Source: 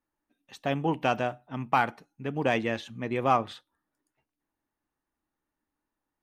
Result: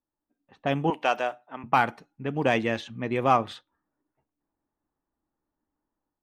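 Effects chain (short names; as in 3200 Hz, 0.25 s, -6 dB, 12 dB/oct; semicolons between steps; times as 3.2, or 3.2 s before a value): 0.9–1.64 HPF 460 Hz 12 dB/oct; low-pass opened by the level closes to 1100 Hz, open at -25.5 dBFS; AGC gain up to 7 dB; gain -4 dB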